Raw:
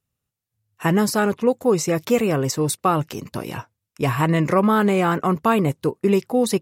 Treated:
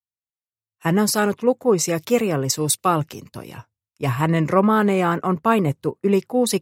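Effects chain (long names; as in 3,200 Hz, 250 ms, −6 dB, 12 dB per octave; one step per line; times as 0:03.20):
multiband upward and downward expander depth 70%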